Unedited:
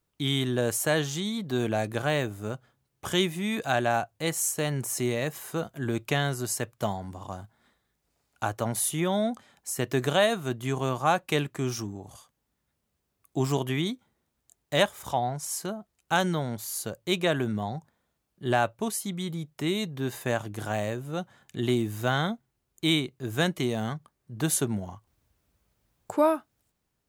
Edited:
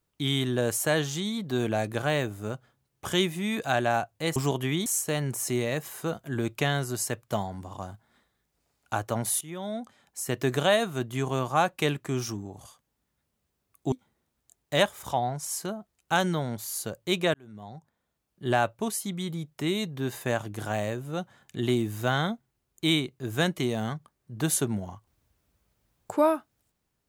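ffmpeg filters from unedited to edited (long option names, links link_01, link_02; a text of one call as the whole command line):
ffmpeg -i in.wav -filter_complex "[0:a]asplit=6[link_01][link_02][link_03][link_04][link_05][link_06];[link_01]atrim=end=4.362[link_07];[link_02]atrim=start=13.418:end=13.922[link_08];[link_03]atrim=start=4.358:end=8.91,asetpts=PTS-STARTPTS,afade=type=out:start_time=4.548:duration=0.004:curve=hsin:silence=0.16788[link_09];[link_04]atrim=start=8.91:end=13.422,asetpts=PTS-STARTPTS,afade=type=in:duration=0.97:silence=0.16788[link_10];[link_05]atrim=start=13.918:end=17.34,asetpts=PTS-STARTPTS,afade=type=out:start_time=3.418:duration=0.004:curve=hsin[link_11];[link_06]atrim=start=17.34,asetpts=PTS-STARTPTS,afade=type=in:duration=1.14[link_12];[link_07][link_08]acrossfade=duration=0.004:curve1=hsin:curve2=hsin[link_13];[link_09][link_10]concat=n=2:v=0:a=1[link_14];[link_13][link_14]acrossfade=duration=0.004:curve1=hsin:curve2=hsin[link_15];[link_11][link_12]concat=n=2:v=0:a=1[link_16];[link_15][link_16]acrossfade=duration=0.004:curve1=hsin:curve2=hsin" out.wav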